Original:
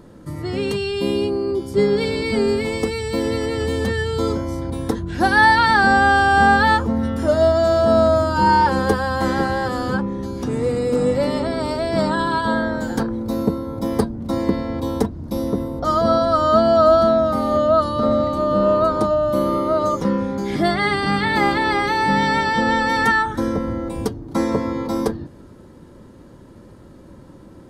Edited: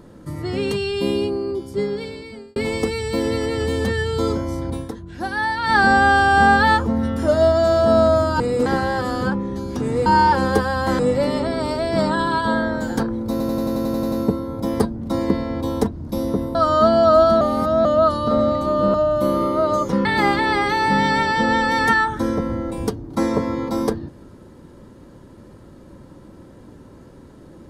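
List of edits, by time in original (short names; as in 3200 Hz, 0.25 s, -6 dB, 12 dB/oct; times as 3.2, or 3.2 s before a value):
1.07–2.56 fade out
4.75–5.76 dip -9.5 dB, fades 0.14 s
8.4–9.33 swap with 10.73–10.99
13.31 stutter 0.09 s, 10 plays
15.74–16.27 cut
17.13–17.57 reverse
18.66–19.06 cut
20.17–21.23 cut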